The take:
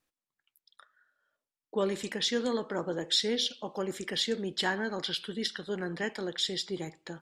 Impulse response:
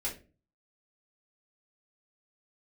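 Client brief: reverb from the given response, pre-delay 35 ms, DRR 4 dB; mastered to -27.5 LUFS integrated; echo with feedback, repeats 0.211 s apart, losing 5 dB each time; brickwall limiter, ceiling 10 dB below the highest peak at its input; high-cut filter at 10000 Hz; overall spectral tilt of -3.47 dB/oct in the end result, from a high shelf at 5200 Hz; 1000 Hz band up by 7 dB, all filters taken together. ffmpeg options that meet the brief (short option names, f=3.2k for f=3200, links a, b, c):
-filter_complex "[0:a]lowpass=10k,equalizer=f=1k:t=o:g=8.5,highshelf=f=5.2k:g=5,alimiter=limit=-22dB:level=0:latency=1,aecho=1:1:211|422|633|844|1055|1266|1477:0.562|0.315|0.176|0.0988|0.0553|0.031|0.0173,asplit=2[a][b];[1:a]atrim=start_sample=2205,adelay=35[c];[b][c]afir=irnorm=-1:irlink=0,volume=-7dB[d];[a][d]amix=inputs=2:normalize=0,volume=2.5dB"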